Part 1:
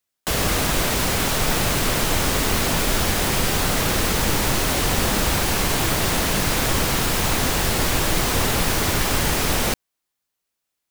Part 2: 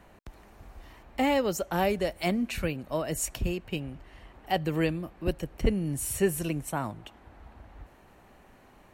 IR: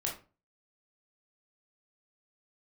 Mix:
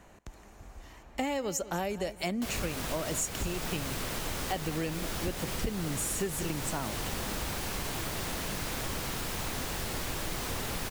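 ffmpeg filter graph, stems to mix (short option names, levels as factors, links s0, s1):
-filter_complex "[0:a]adelay=2150,volume=0.211[s0];[1:a]equalizer=f=6800:w=2.1:g=10,volume=0.944,asplit=2[s1][s2];[s2]volume=0.126,aecho=0:1:194|388|582|776:1|0.25|0.0625|0.0156[s3];[s0][s1][s3]amix=inputs=3:normalize=0,acompressor=threshold=0.0355:ratio=6"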